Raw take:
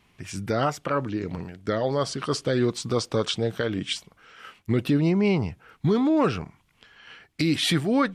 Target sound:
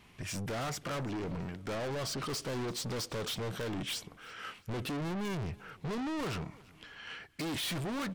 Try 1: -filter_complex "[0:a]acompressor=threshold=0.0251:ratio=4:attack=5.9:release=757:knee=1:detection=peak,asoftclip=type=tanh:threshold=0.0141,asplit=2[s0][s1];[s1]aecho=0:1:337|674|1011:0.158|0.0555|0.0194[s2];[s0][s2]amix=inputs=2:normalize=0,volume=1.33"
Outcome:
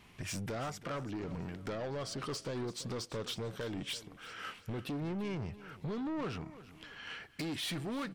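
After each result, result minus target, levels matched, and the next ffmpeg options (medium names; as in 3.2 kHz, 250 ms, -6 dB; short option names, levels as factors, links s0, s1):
compression: peak gain reduction +13.5 dB; echo-to-direct +7 dB
-filter_complex "[0:a]asoftclip=type=tanh:threshold=0.0141,asplit=2[s0][s1];[s1]aecho=0:1:337|674|1011:0.158|0.0555|0.0194[s2];[s0][s2]amix=inputs=2:normalize=0,volume=1.33"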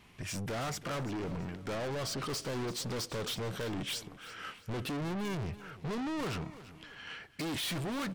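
echo-to-direct +7 dB
-filter_complex "[0:a]asoftclip=type=tanh:threshold=0.0141,asplit=2[s0][s1];[s1]aecho=0:1:337|674:0.0708|0.0248[s2];[s0][s2]amix=inputs=2:normalize=0,volume=1.33"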